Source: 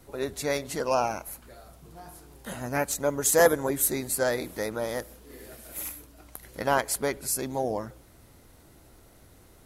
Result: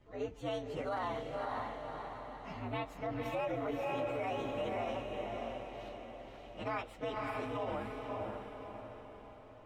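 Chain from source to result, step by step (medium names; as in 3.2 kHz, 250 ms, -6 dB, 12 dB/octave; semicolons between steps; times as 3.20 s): frequency axis rescaled in octaves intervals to 120%; low-pass 3.5 kHz 12 dB/octave; echo that smears into a reverb 547 ms, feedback 49%, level -4 dB; peak limiter -23.5 dBFS, peak gain reduction 13.5 dB; trim -5 dB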